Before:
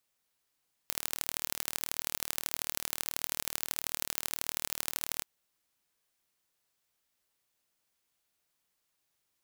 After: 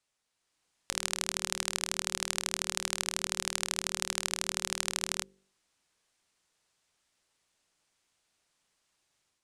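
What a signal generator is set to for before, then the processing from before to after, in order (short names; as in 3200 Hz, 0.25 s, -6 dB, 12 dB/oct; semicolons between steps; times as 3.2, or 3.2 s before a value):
pulse train 38.4/s, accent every 3, -3.5 dBFS 4.33 s
LPF 9400 Hz 24 dB/oct; de-hum 48.15 Hz, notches 11; AGC gain up to 6 dB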